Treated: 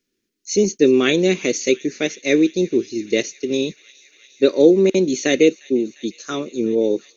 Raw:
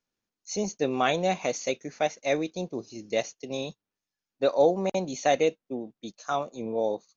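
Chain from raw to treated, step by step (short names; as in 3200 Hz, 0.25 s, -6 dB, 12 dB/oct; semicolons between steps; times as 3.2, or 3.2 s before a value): EQ curve 140 Hz 0 dB, 380 Hz +13 dB, 750 Hz -17 dB, 1900 Hz +4 dB; thin delay 0.351 s, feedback 83%, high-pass 2100 Hz, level -21 dB; gain +6 dB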